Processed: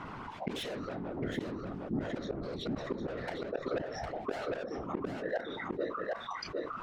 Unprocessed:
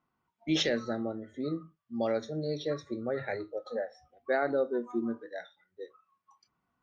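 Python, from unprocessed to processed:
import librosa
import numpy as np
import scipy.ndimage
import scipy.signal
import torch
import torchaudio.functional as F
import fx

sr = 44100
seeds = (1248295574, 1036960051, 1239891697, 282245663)

y = scipy.signal.sosfilt(scipy.signal.butter(2, 3600.0, 'lowpass', fs=sr, output='sos'), x)
y = fx.hum_notches(y, sr, base_hz=60, count=4)
y = 10.0 ** (-35.5 / 20.0) * np.tanh(y / 10.0 ** (-35.5 / 20.0))
y = fx.whisperise(y, sr, seeds[0])
y = fx.gate_flip(y, sr, shuts_db=-32.0, range_db=-26)
y = y + 10.0 ** (-6.5 / 20.0) * np.pad(y, (int(757 * sr / 1000.0), 0))[:len(y)]
y = fx.env_flatten(y, sr, amount_pct=70)
y = y * librosa.db_to_amplitude(7.0)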